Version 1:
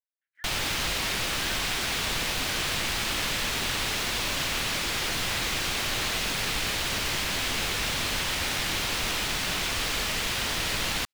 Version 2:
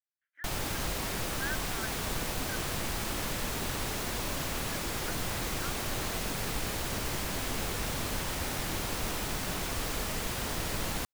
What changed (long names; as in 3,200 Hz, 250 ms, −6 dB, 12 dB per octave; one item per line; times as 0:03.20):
speech +11.5 dB
master: add parametric band 3,100 Hz −11.5 dB 2.5 octaves